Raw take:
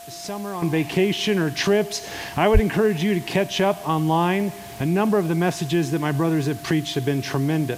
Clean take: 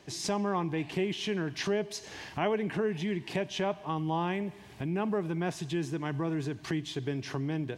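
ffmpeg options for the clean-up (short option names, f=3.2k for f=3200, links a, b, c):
-filter_complex "[0:a]bandreject=f=690:w=30,asplit=3[a][b][c];[a]afade=t=out:st=2.53:d=0.02[d];[b]highpass=f=140:w=0.5412,highpass=f=140:w=1.3066,afade=t=in:st=2.53:d=0.02,afade=t=out:st=2.65:d=0.02[e];[c]afade=t=in:st=2.65:d=0.02[f];[d][e][f]amix=inputs=3:normalize=0,afwtdn=0.0063,asetnsamples=n=441:p=0,asendcmd='0.62 volume volume -11dB',volume=0dB"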